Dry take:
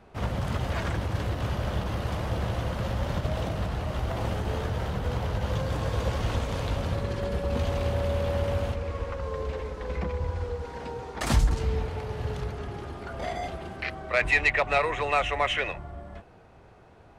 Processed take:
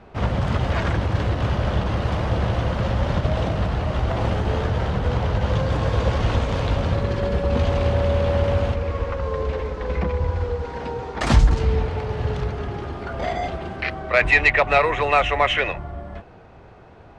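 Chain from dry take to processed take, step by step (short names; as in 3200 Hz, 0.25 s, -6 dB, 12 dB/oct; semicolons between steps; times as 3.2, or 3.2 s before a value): air absorption 85 m; gain +7.5 dB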